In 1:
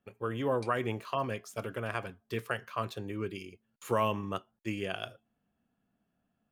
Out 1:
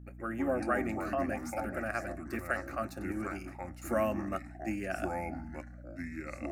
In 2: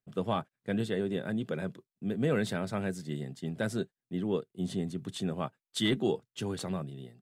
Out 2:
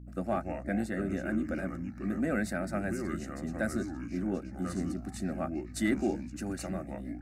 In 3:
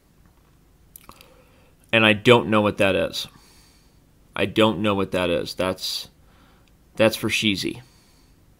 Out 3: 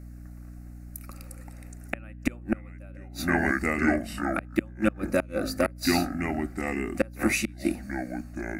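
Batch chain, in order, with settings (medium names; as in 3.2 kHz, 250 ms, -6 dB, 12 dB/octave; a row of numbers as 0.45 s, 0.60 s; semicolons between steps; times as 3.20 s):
ever faster or slower copies 104 ms, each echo -4 st, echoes 3, each echo -6 dB; inverted gate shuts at -9 dBFS, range -34 dB; static phaser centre 660 Hz, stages 8; hum 60 Hz, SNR 13 dB; trim +2.5 dB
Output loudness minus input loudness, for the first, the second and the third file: -0.5 LU, -0.5 LU, -8.0 LU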